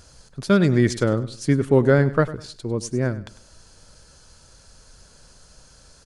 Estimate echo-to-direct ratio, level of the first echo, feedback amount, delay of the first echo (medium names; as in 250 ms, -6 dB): -16.0 dB, -16.5 dB, 30%, 100 ms